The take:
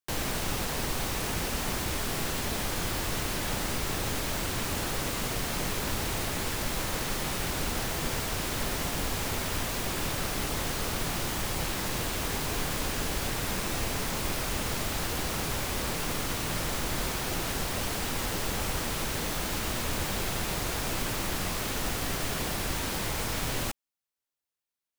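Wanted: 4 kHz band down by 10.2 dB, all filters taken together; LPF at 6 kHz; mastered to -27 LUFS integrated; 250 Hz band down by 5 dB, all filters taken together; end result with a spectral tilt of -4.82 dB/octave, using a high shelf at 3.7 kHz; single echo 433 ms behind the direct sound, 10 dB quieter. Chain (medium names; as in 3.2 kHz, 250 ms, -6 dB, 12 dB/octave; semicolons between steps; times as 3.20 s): low-pass 6 kHz; peaking EQ 250 Hz -7 dB; treble shelf 3.7 kHz -7 dB; peaking EQ 4 kHz -8 dB; delay 433 ms -10 dB; trim +8.5 dB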